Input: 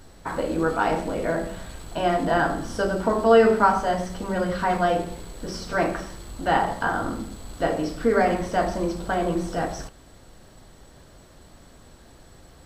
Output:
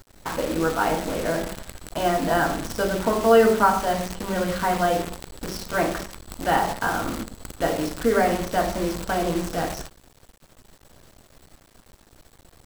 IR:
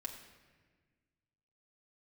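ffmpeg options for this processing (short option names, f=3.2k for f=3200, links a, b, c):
-af "acrusher=bits=6:dc=4:mix=0:aa=0.000001"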